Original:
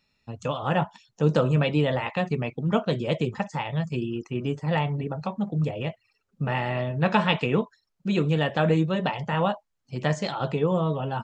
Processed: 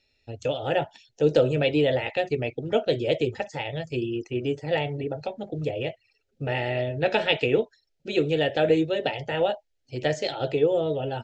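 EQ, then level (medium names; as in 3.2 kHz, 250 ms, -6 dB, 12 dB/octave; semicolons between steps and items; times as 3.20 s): low-pass 6 kHz 12 dB/octave; static phaser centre 450 Hz, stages 4; +4.5 dB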